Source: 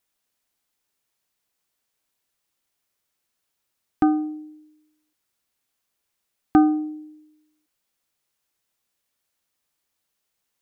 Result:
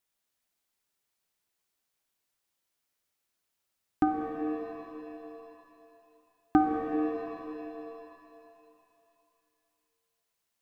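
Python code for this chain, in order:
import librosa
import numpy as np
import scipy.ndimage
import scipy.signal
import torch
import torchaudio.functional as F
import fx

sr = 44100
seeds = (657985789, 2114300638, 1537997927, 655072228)

y = fx.rev_shimmer(x, sr, seeds[0], rt60_s=2.8, semitones=7, shimmer_db=-8, drr_db=3.5)
y = F.gain(torch.from_numpy(y), -5.5).numpy()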